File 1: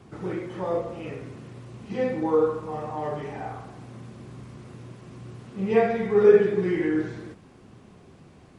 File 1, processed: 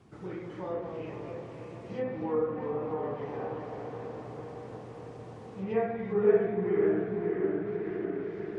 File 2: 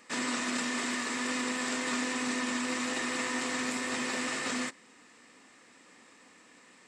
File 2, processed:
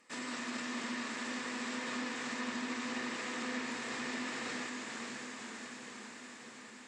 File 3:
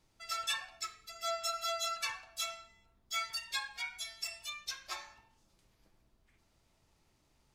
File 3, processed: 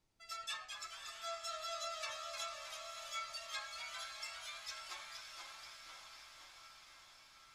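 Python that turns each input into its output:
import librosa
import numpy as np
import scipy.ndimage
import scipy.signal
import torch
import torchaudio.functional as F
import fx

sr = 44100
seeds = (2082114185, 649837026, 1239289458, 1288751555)

y = fx.echo_pitch(x, sr, ms=186, semitones=-1, count=3, db_per_echo=-6.0)
y = fx.echo_diffused(y, sr, ms=588, feedback_pct=71, wet_db=-7.0)
y = fx.env_lowpass_down(y, sr, base_hz=1900.0, full_db=-19.5)
y = y * librosa.db_to_amplitude(-8.5)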